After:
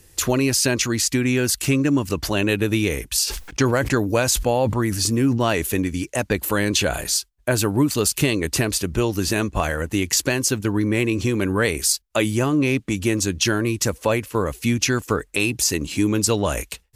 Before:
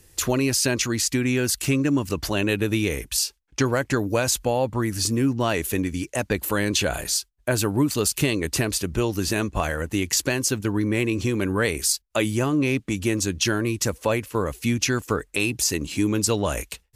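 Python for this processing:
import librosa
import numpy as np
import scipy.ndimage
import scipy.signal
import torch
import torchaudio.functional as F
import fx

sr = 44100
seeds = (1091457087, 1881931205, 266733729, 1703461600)

y = fx.sustainer(x, sr, db_per_s=62.0, at=(3.26, 5.62), fade=0.02)
y = y * librosa.db_to_amplitude(2.5)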